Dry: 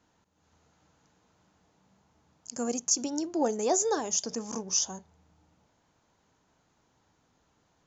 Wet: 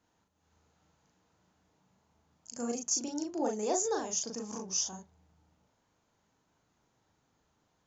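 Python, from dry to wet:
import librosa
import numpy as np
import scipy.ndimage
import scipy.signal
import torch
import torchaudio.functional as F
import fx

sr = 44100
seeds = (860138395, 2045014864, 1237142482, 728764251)

y = fx.doubler(x, sr, ms=38.0, db=-2.5)
y = y * librosa.db_to_amplitude(-6.5)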